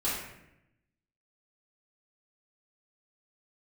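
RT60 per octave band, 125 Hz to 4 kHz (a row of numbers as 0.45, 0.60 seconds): 1.2, 1.1, 0.90, 0.75, 0.85, 0.60 seconds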